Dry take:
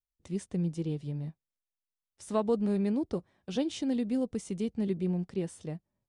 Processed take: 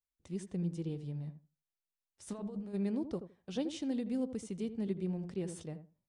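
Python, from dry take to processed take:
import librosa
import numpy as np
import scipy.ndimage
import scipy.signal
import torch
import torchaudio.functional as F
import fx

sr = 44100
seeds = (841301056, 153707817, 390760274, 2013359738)

y = fx.over_compress(x, sr, threshold_db=-35.0, ratio=-1.0, at=(2.26, 2.73), fade=0.02)
y = fx.echo_filtered(y, sr, ms=81, feedback_pct=17, hz=1100.0, wet_db=-10.0)
y = fx.sustainer(y, sr, db_per_s=87.0, at=(5.07, 5.65))
y = y * 10.0 ** (-5.5 / 20.0)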